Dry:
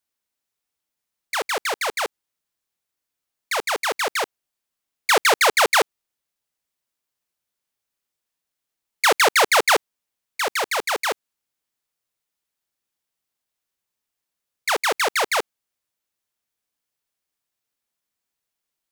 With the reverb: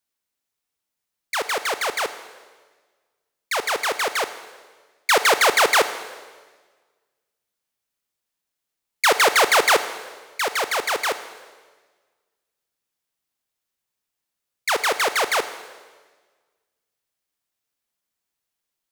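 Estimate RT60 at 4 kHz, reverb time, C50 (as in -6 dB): 1.4 s, 1.4 s, 12.0 dB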